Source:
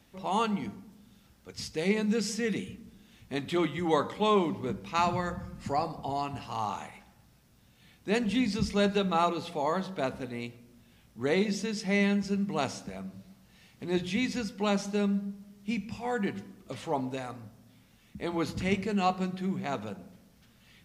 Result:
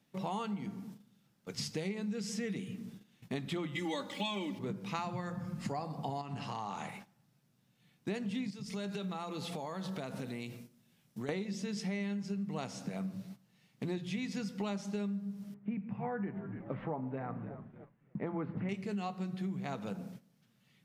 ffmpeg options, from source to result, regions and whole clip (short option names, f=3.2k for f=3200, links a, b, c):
-filter_complex "[0:a]asettb=1/sr,asplit=3[a][b][c];[a]atrim=end=3.754[d];[b]atrim=start=3.75:end=4.59,asetpts=PTS-STARTPTS,afade=t=in:d=0.004:c=qsin,afade=t=out:st=0.836:d=0.004:c=qsin,highshelf=f=1.8k:t=q:w=1.5:g=7.5,aeval=exprs='sgn(val(0))*max(abs(val(0))-0.00141,0)':c=same,aecho=1:1:3.5:0.94,atrim=end_sample=37044[e];[c]atrim=start=4.586[f];[d][e]acrossfade=d=0.004:c1=hsin:c2=qsin[g];[g][f]acrossfade=d=0.004:c1=qsin:c2=hsin,asettb=1/sr,asplit=3[h][i][j];[h]atrim=end=6.214[k];[i]atrim=start=6.21:end=6.89,asetpts=PTS-STARTPTS,afade=t=in:d=0.004:c=qsin,afade=t=out:st=0.676:d=0.004:c=qsin,lowpass=8.6k,acompressor=threshold=-37dB:ratio=4:attack=3.2:release=140:knee=1:detection=peak[l];[j]atrim=start=6.886[m];[k][l]acrossfade=d=0.004:c1=hsin:c2=qsin[n];[n][m]acrossfade=d=0.004:c1=qsin:c2=hsin,asettb=1/sr,asplit=3[o][p][q];[o]atrim=end=8.504[r];[p]atrim=start=8.5:end=11.29,asetpts=PTS-STARTPTS,afade=t=in:d=0.004:c=qsin,afade=t=out:st=2.786:d=0.004:c=qsin,highshelf=f=3.9k:g=6.5,acompressor=threshold=-40dB:ratio=6:attack=3.2:release=140:knee=1:detection=peak[s];[q]atrim=start=11.286[t];[r][s]acrossfade=d=0.004:c1=hsin:c2=qsin[u];[u][t]acrossfade=d=0.004:c1=qsin:c2=hsin,asettb=1/sr,asplit=3[v][w][x];[v]atrim=end=15.544[y];[w]atrim=start=15.54:end=18.69,asetpts=PTS-STARTPTS,afade=t=in:d=0.004:c=qsin,afade=t=out:st=3.146:d=0.004:c=qsin,lowpass=f=1.9k:w=0.5412,lowpass=f=1.9k:w=1.3066,asplit=6[z][aa][ab][ac][ad][ae];[aa]adelay=292,afreqshift=-85,volume=-17.5dB[af];[ab]adelay=584,afreqshift=-170,volume=-22.5dB[ag];[ac]adelay=876,afreqshift=-255,volume=-27.6dB[ah];[ad]adelay=1168,afreqshift=-340,volume=-32.6dB[ai];[ae]adelay=1460,afreqshift=-425,volume=-37.6dB[aj];[z][af][ag][ah][ai][aj]amix=inputs=6:normalize=0,atrim=end_sample=138915[ak];[x]atrim=start=18.686[al];[y][ak]acrossfade=d=0.004:c1=hsin:c2=qsin[am];[am][al]acrossfade=d=0.004:c1=qsin:c2=hsin,agate=range=-14dB:threshold=-53dB:ratio=16:detection=peak,lowshelf=f=100:t=q:w=3:g=-11.5,acompressor=threshold=-36dB:ratio=12,volume=2dB"